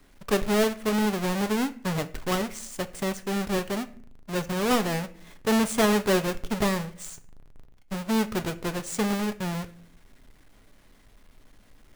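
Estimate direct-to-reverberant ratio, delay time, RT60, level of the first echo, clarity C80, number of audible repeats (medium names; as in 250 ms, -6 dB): 9.5 dB, no echo, 0.50 s, no echo, 21.0 dB, no echo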